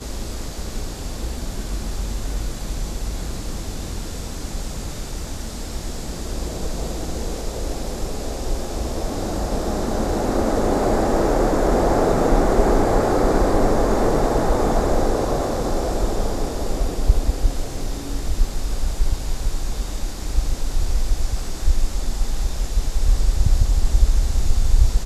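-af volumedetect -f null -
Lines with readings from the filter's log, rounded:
mean_volume: -19.1 dB
max_volume: -1.3 dB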